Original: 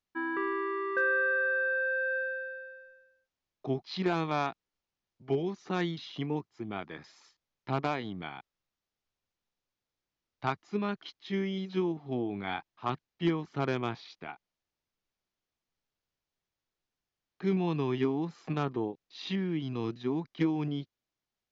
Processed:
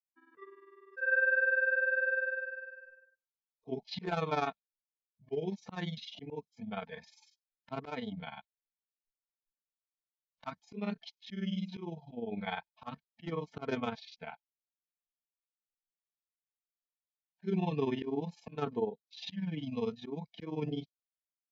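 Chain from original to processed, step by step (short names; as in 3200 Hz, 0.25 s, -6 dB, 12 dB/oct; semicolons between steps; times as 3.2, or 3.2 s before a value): comb 4.5 ms, depth 54%; dynamic EQ 450 Hz, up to +5 dB, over -48 dBFS, Q 4.1; spectral noise reduction 24 dB; auto swell 0.166 s; grains 69 ms, spray 13 ms, pitch spread up and down by 0 st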